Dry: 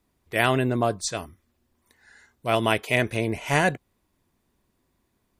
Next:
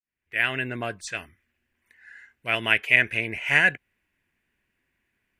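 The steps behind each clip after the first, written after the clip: fade-in on the opening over 0.76 s; high-order bell 2.1 kHz +16 dB 1.2 oct; trim -8.5 dB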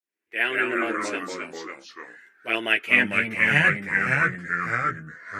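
chorus voices 2, 0.4 Hz, delay 11 ms, depth 2.7 ms; ever faster or slower copies 124 ms, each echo -2 st, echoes 3; high-pass sweep 340 Hz -> 150 Hz, 2.63–3.20 s; trim +2 dB

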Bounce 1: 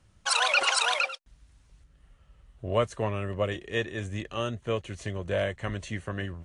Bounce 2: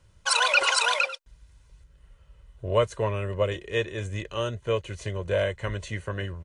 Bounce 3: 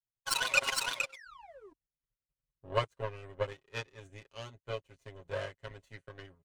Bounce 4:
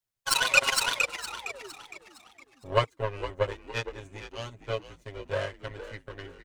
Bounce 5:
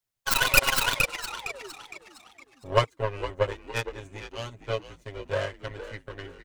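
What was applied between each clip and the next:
comb 2 ms, depth 49%; trim +1 dB
painted sound fall, 1.12–1.73 s, 310–2400 Hz -31 dBFS; power-law waveshaper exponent 2; comb 7.4 ms, depth 78%; trim -4 dB
frequency-shifting echo 461 ms, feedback 40%, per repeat -70 Hz, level -12 dB; trim +6.5 dB
tracing distortion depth 0.23 ms; trim +2 dB

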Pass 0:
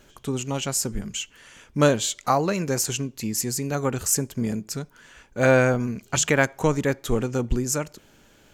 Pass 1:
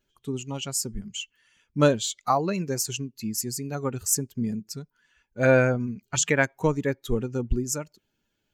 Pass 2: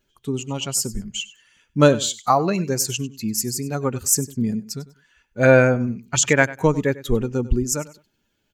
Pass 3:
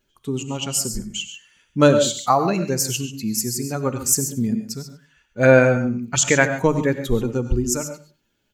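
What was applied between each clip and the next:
expander on every frequency bin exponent 1.5
feedback delay 98 ms, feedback 22%, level -18 dB; trim +5.5 dB
hum notches 50/100/150 Hz; gated-style reverb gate 160 ms rising, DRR 9 dB

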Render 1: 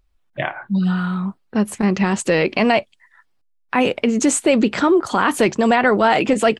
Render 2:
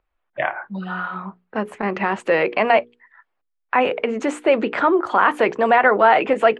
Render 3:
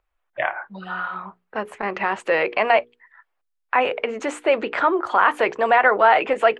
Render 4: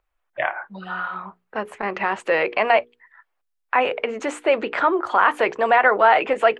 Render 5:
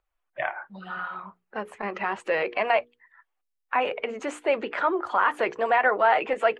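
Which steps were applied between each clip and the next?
three-band isolator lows -15 dB, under 400 Hz, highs -24 dB, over 2.6 kHz; hum notches 60/120/180/240/300/360/420/480 Hz; trim +3 dB
peaking EQ 200 Hz -9.5 dB 1.7 oct
hum notches 60/120 Hz
coarse spectral quantiser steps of 15 dB; trim -5 dB

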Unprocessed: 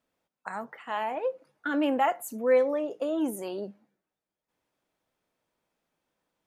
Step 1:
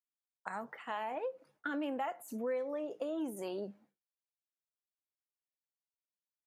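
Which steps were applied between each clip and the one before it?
de-esser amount 80%; expander -58 dBFS; compression 4:1, threshold -33 dBFS, peak gain reduction 12.5 dB; trim -2.5 dB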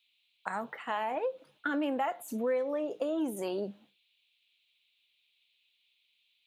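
band noise 2.3–4 kHz -79 dBFS; trim +5.5 dB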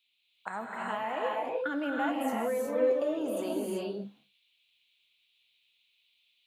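gated-style reverb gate 400 ms rising, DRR -2.5 dB; trim -2.5 dB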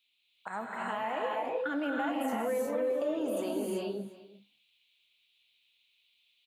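peak limiter -23.5 dBFS, peak gain reduction 7 dB; delay 351 ms -18 dB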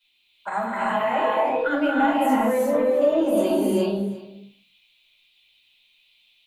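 simulated room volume 170 m³, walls furnished, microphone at 5.1 m

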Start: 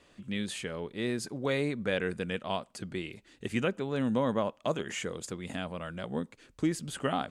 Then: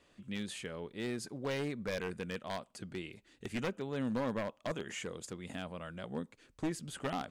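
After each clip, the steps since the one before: one-sided wavefolder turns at -24.5 dBFS; trim -5.5 dB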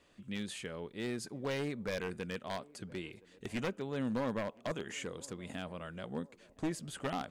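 band-passed feedback delay 1018 ms, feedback 57%, band-pass 470 Hz, level -21 dB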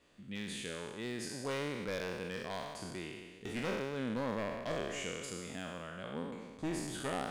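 spectral sustain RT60 1.52 s; trim -3.5 dB

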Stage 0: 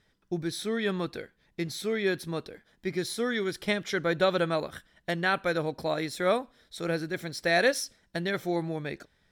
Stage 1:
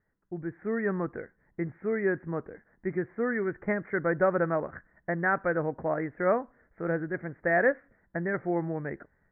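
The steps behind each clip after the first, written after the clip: steep low-pass 2 kHz 72 dB/octave; level rider gain up to 8 dB; trim -7.5 dB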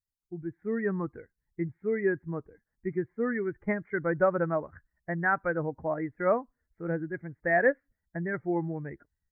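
expander on every frequency bin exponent 1.5; trim +2 dB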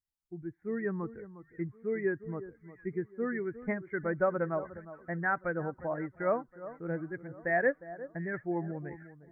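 echo whose repeats swap between lows and highs 357 ms, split 1.4 kHz, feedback 56%, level -14 dB; trim -4 dB

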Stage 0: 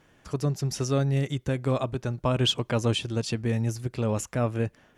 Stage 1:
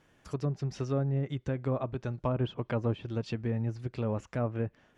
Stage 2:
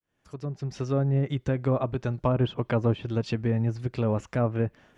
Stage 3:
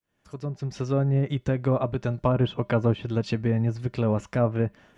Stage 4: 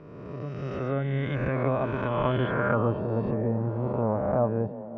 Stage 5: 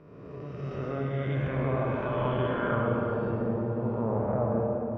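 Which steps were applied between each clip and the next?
low-pass that closes with the level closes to 1.2 kHz, closed at -21 dBFS; trim -5 dB
fade-in on the opening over 1.16 s; trim +6 dB
feedback comb 200 Hz, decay 0.18 s, harmonics odd, mix 50%; trim +7 dB
reverse spectral sustain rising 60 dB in 1.69 s; repeats whose band climbs or falls 353 ms, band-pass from 210 Hz, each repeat 1.4 oct, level -8.5 dB; low-pass sweep 2.1 kHz -> 880 Hz, 2.32–3.10 s; trim -6 dB
reverberation RT60 2.9 s, pre-delay 51 ms, DRR -1 dB; trim -6 dB

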